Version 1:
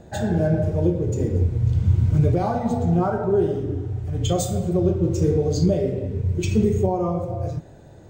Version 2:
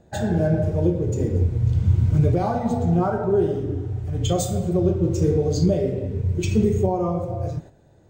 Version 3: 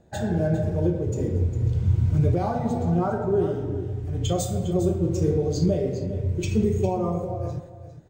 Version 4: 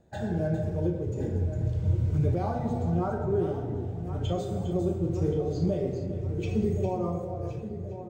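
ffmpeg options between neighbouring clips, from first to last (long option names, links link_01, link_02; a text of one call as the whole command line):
ffmpeg -i in.wav -af "agate=range=-9dB:threshold=-37dB:ratio=16:detection=peak" out.wav
ffmpeg -i in.wav -af "aecho=1:1:404:0.237,volume=-3dB" out.wav
ffmpeg -i in.wav -filter_complex "[0:a]acrossover=split=3800[link_01][link_02];[link_02]acompressor=threshold=-52dB:ratio=4:attack=1:release=60[link_03];[link_01][link_03]amix=inputs=2:normalize=0,asplit=2[link_04][link_05];[link_05]adelay=1074,lowpass=frequency=2200:poles=1,volume=-11dB,asplit=2[link_06][link_07];[link_07]adelay=1074,lowpass=frequency=2200:poles=1,volume=0.53,asplit=2[link_08][link_09];[link_09]adelay=1074,lowpass=frequency=2200:poles=1,volume=0.53,asplit=2[link_10][link_11];[link_11]adelay=1074,lowpass=frequency=2200:poles=1,volume=0.53,asplit=2[link_12][link_13];[link_13]adelay=1074,lowpass=frequency=2200:poles=1,volume=0.53,asplit=2[link_14][link_15];[link_15]adelay=1074,lowpass=frequency=2200:poles=1,volume=0.53[link_16];[link_04][link_06][link_08][link_10][link_12][link_14][link_16]amix=inputs=7:normalize=0,volume=-5dB" out.wav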